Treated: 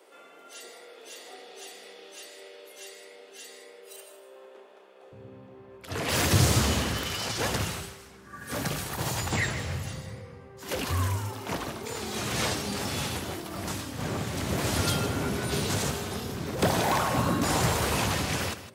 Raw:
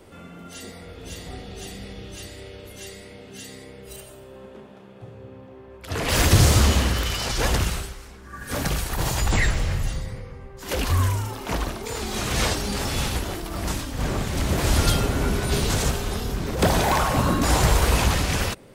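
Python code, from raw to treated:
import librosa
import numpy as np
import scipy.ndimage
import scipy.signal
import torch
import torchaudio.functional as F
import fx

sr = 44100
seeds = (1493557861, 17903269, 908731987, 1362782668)

y = fx.highpass(x, sr, hz=fx.steps((0.0, 390.0), (5.12, 89.0)), slope=24)
y = y + 10.0 ** (-13.0 / 20.0) * np.pad(y, (int(158 * sr / 1000.0), 0))[:len(y)]
y = y * 10.0 ** (-4.5 / 20.0)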